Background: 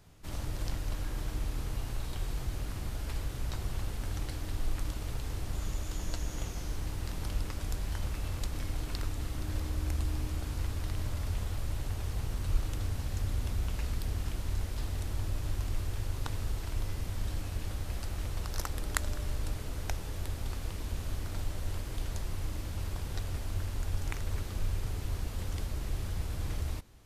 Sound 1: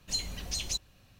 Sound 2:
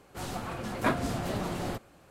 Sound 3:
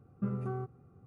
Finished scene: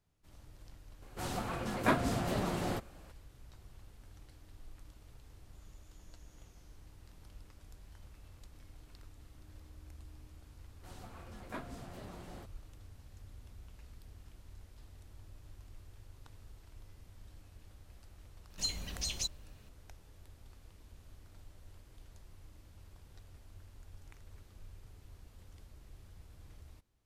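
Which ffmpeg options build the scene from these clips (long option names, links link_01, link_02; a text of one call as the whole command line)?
ffmpeg -i bed.wav -i cue0.wav -i cue1.wav -filter_complex "[2:a]asplit=2[link_01][link_02];[0:a]volume=-20dB[link_03];[link_01]atrim=end=2.1,asetpts=PTS-STARTPTS,volume=-1.5dB,afade=type=in:duration=0.004:curve=hsin,afade=type=out:start_time=2.096:duration=0.004:curve=hsin,adelay=1020[link_04];[link_02]atrim=end=2.1,asetpts=PTS-STARTPTS,volume=-16.5dB,afade=type=in:duration=0.004:curve=hsin,afade=type=out:start_time=2.096:duration=0.004:curve=hsin,adelay=10680[link_05];[1:a]atrim=end=1.19,asetpts=PTS-STARTPTS,volume=-3dB,afade=type=in:duration=0.004:curve=hsin,afade=type=out:start_time=1.186:duration=0.004:curve=hsin,adelay=18500[link_06];[link_03][link_04][link_05][link_06]amix=inputs=4:normalize=0" out.wav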